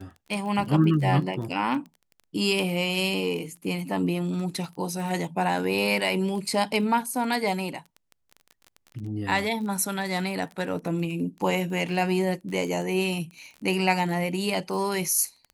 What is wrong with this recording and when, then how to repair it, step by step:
crackle 22/s -34 dBFS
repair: de-click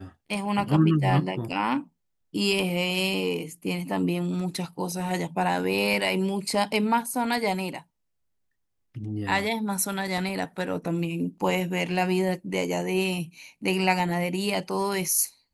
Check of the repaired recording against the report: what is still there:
none

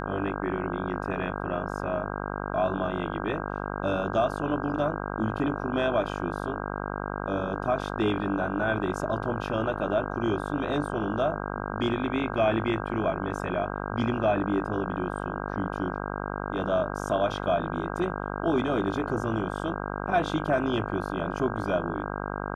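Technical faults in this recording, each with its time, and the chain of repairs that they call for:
buzz 50 Hz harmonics 32 -33 dBFS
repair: de-hum 50 Hz, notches 32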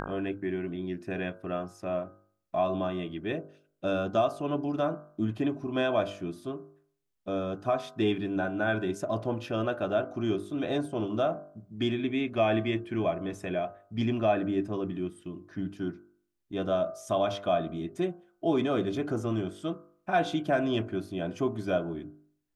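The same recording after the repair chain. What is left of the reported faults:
none

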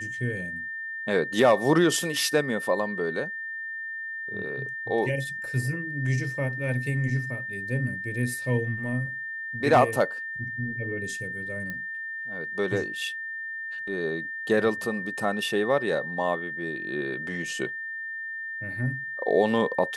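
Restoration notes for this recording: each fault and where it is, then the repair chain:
tone 1800 Hz -32 dBFS
11.7 pop -21 dBFS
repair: de-click; notch 1800 Hz, Q 30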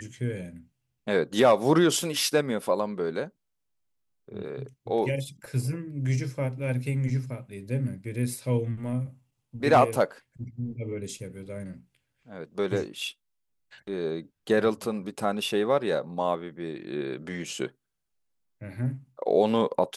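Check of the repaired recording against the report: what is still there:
none

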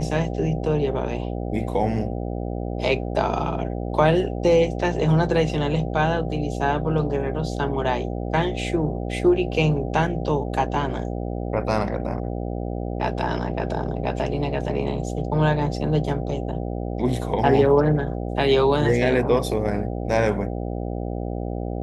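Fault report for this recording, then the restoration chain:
buzz 60 Hz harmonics 13 -28 dBFS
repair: de-hum 60 Hz, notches 13

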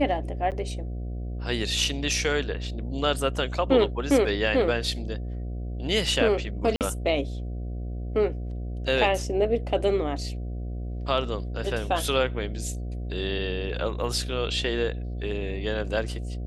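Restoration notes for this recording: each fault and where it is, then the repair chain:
buzz 60 Hz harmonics 12 -32 dBFS
0.51–0.52 gap 8 ms
6.76–6.81 gap 48 ms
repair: de-hum 60 Hz, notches 12; interpolate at 0.51, 8 ms; interpolate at 6.76, 48 ms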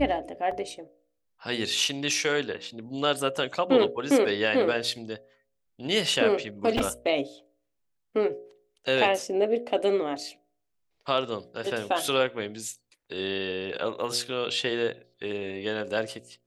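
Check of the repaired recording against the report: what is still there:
none

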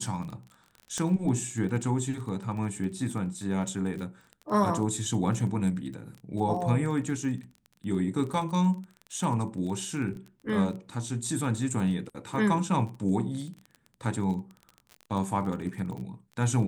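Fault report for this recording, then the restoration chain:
crackle 21/s -36 dBFS
0.98 pop -20 dBFS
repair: de-click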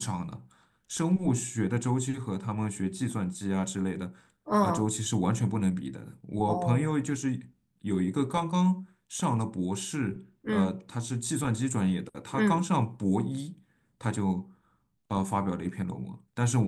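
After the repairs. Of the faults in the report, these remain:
none

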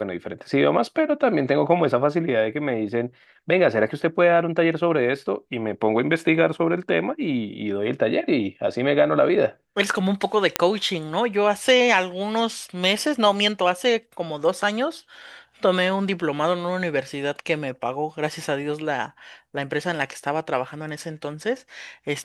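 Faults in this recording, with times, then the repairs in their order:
10.56 pop -1 dBFS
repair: de-click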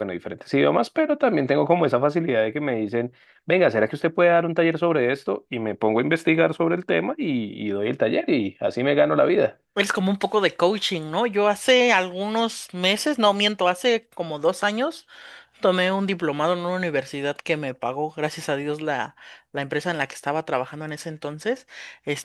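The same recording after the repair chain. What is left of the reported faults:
10.56 pop

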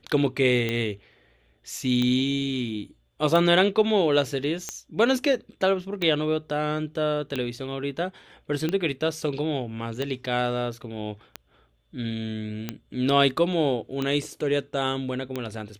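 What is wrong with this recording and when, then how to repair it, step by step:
tick 45 rpm -14 dBFS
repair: de-click

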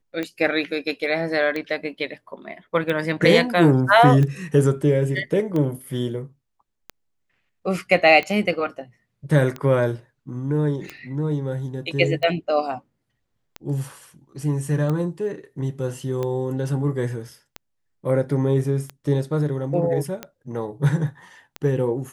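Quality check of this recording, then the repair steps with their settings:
tick 45 rpm -15 dBFS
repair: de-click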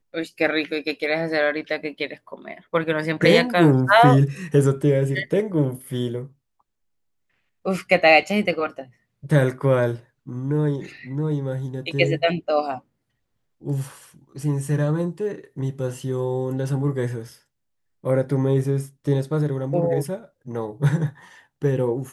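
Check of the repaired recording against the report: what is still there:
none

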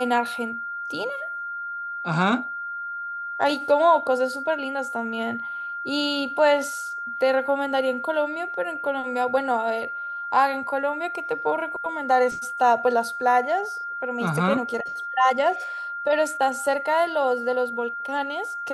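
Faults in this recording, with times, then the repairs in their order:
tone 1400 Hz -29 dBFS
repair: notch 1400 Hz, Q 30

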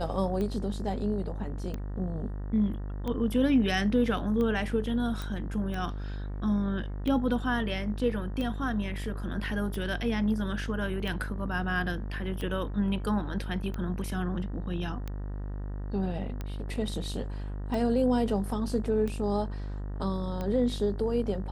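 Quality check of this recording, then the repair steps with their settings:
buzz 50 Hz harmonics 38 -35 dBFS
tick 45 rpm -22 dBFS
5.22 pop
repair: de-click; de-hum 50 Hz, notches 38

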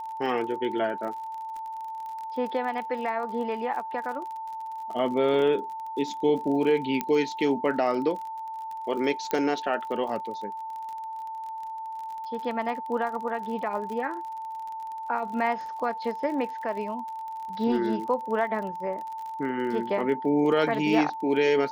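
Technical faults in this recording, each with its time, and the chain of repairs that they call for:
crackle 39/s -35 dBFS
tone 890 Hz -33 dBFS
7.01 pop -12 dBFS
9.31 pop -13 dBFS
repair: de-click; notch 890 Hz, Q 30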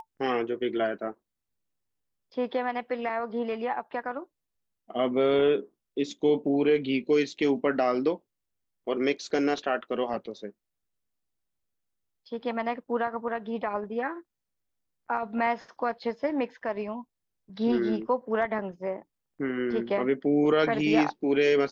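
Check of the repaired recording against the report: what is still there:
none

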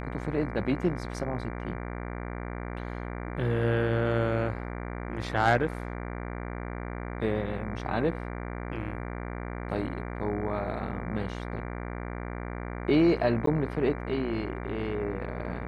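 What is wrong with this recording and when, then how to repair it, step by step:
buzz 60 Hz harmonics 39 -36 dBFS
13.46–13.47 gap 13 ms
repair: de-hum 60 Hz, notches 39; interpolate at 13.46, 13 ms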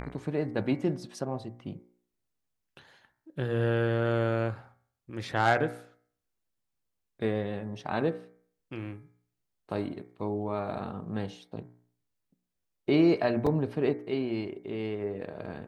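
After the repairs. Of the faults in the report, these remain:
none

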